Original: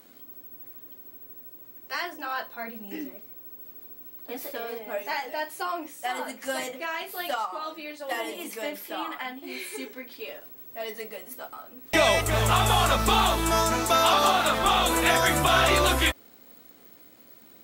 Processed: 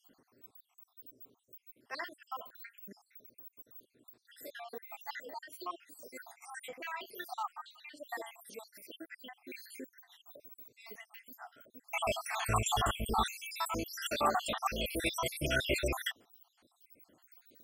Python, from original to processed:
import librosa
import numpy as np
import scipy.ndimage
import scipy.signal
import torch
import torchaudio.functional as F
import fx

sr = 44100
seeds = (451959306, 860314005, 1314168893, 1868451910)

y = fx.spec_dropout(x, sr, seeds[0], share_pct=72)
y = fx.peak_eq(y, sr, hz=7200.0, db=11.0, octaves=0.26, at=(12.24, 12.74))
y = y * 10.0 ** (-6.5 / 20.0)